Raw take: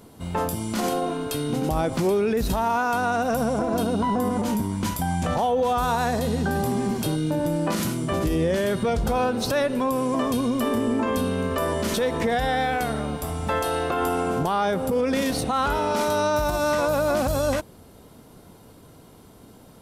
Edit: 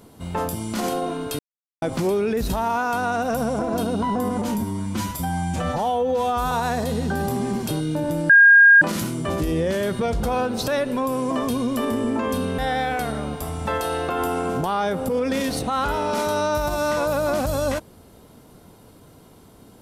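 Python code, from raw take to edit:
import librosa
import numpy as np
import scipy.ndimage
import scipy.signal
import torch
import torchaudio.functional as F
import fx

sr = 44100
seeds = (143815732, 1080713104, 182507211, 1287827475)

y = fx.edit(x, sr, fx.silence(start_s=1.39, length_s=0.43),
    fx.stretch_span(start_s=4.58, length_s=1.29, factor=1.5),
    fx.insert_tone(at_s=7.65, length_s=0.52, hz=1620.0, db=-7.5),
    fx.cut(start_s=11.42, length_s=0.98), tone=tone)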